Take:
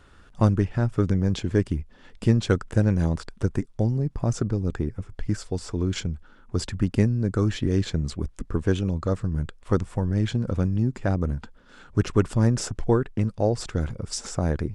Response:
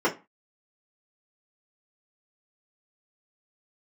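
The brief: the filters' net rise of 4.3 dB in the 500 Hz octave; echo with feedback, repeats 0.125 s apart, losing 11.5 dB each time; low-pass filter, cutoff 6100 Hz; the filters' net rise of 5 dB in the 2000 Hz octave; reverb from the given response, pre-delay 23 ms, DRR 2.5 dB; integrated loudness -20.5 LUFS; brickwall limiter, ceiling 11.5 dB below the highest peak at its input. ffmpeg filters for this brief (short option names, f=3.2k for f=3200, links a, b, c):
-filter_complex "[0:a]lowpass=6.1k,equalizer=f=500:t=o:g=5,equalizer=f=2k:t=o:g=6.5,alimiter=limit=-16.5dB:level=0:latency=1,aecho=1:1:125|250|375:0.266|0.0718|0.0194,asplit=2[a][b];[1:a]atrim=start_sample=2205,adelay=23[c];[b][c]afir=irnorm=-1:irlink=0,volume=-17.5dB[d];[a][d]amix=inputs=2:normalize=0,volume=5.5dB"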